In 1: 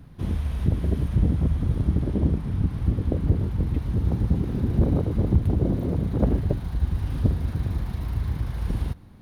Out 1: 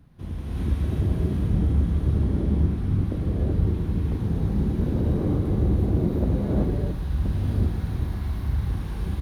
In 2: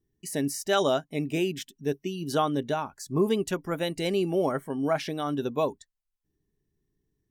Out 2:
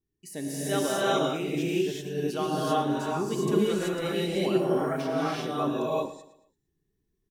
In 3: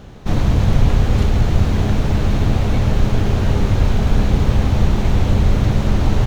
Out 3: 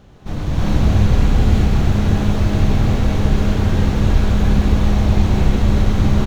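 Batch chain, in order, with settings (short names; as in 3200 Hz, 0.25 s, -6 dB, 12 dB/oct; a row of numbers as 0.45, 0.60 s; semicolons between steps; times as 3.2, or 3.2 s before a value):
on a send: feedback echo 0.113 s, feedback 39%, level -14 dB; on the sum: non-linear reverb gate 0.41 s rising, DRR -7.5 dB; gain -8 dB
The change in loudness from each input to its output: 0.0, +0.5, +0.5 LU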